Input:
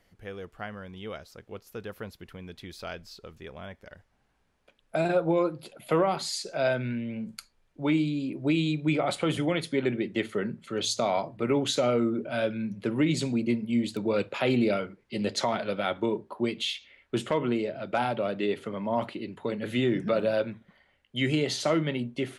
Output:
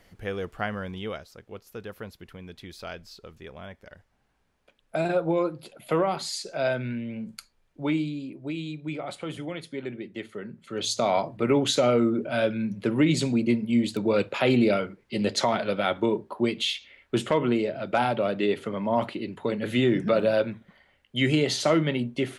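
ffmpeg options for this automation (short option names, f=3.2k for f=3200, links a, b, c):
-af "volume=19dB,afade=t=out:st=0.87:d=0.4:silence=0.398107,afade=t=out:st=7.82:d=0.59:silence=0.421697,afade=t=in:st=10.47:d=0.68:silence=0.281838"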